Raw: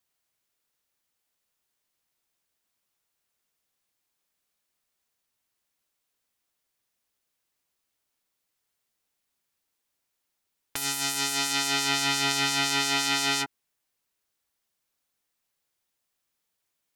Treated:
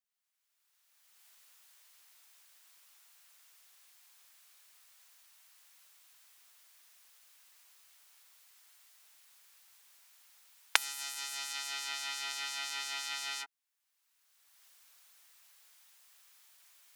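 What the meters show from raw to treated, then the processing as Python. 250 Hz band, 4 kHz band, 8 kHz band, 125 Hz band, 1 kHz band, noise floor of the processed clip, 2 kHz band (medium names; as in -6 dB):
-32.5 dB, -11.0 dB, -11.0 dB, under -40 dB, -12.5 dB, -82 dBFS, -9.5 dB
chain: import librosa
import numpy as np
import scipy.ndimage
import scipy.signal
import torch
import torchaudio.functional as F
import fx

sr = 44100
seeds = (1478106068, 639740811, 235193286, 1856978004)

y = fx.recorder_agc(x, sr, target_db=-11.5, rise_db_per_s=24.0, max_gain_db=30)
y = scipy.signal.sosfilt(scipy.signal.butter(2, 990.0, 'highpass', fs=sr, output='sos'), y)
y = y * 10.0 ** (-12.5 / 20.0)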